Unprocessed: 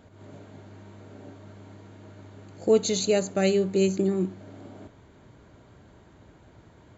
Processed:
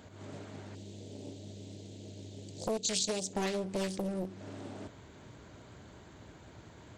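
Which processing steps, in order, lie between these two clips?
high-pass filter 44 Hz
high-shelf EQ 2,600 Hz +8 dB
downward compressor 4 to 1, threshold −33 dBFS, peak gain reduction 15 dB
0:00.75–0:03.33: drawn EQ curve 550 Hz 0 dB, 1,200 Hz −25 dB, 3,500 Hz +3 dB
highs frequency-modulated by the lows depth 0.99 ms

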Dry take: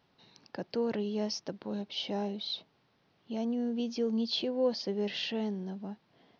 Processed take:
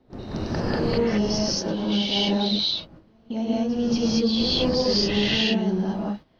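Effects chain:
wind on the microphone 340 Hz −45 dBFS
in parallel at 0 dB: compressor whose output falls as the input rises −38 dBFS, ratio −0.5
on the sum: echo ahead of the sound 231 ms −15 dB
noise gate −38 dBFS, range −17 dB
reverb whose tail is shaped and stops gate 250 ms rising, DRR −7 dB

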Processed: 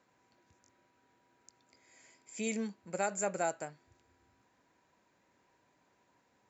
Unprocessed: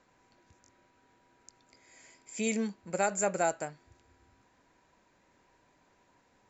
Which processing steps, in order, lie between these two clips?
high-pass filter 80 Hz
level −4.5 dB

